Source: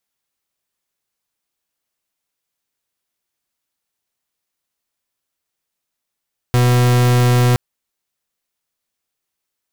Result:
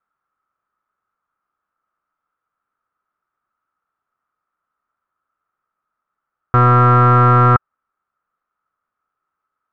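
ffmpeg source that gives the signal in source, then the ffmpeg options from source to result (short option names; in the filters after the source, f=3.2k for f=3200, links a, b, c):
-f lavfi -i "aevalsrc='0.237*(2*lt(mod(123*t,1),0.42)-1)':d=1.02:s=44100"
-af "lowpass=f=1.3k:t=q:w=11"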